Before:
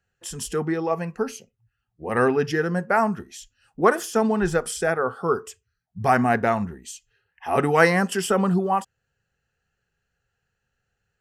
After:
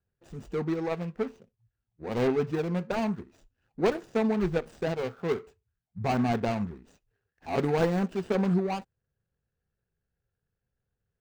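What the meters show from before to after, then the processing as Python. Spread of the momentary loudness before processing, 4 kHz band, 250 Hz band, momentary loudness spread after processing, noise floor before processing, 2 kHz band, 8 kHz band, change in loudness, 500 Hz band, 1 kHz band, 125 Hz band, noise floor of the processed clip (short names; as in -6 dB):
17 LU, -7.5 dB, -4.0 dB, 11 LU, -79 dBFS, -13.5 dB, -19.0 dB, -6.5 dB, -6.0 dB, -11.0 dB, -3.5 dB, under -85 dBFS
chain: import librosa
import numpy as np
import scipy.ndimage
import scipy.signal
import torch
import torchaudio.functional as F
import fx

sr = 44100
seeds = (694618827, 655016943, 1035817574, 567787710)

y = scipy.signal.medfilt(x, 41)
y = fx.peak_eq(y, sr, hz=12000.0, db=-11.0, octaves=0.57)
y = F.gain(torch.from_numpy(y), -3.5).numpy()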